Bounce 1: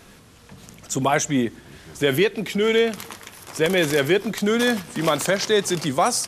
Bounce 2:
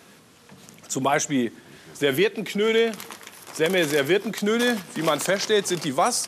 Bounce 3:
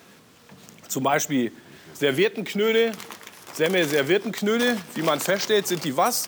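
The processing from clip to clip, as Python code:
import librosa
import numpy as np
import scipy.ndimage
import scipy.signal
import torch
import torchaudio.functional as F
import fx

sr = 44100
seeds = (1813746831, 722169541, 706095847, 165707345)

y1 = scipy.signal.sosfilt(scipy.signal.butter(2, 160.0, 'highpass', fs=sr, output='sos'), x)
y1 = F.gain(torch.from_numpy(y1), -1.5).numpy()
y2 = np.repeat(scipy.signal.resample_poly(y1, 1, 2), 2)[:len(y1)]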